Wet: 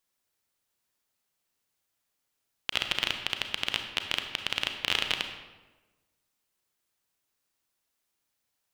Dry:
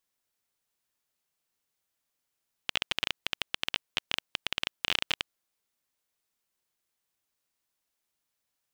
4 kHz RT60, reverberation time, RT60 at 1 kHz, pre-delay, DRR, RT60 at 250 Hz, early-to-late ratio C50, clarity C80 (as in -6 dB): 0.80 s, 1.2 s, 1.1 s, 31 ms, 5.5 dB, 1.4 s, 7.0 dB, 8.5 dB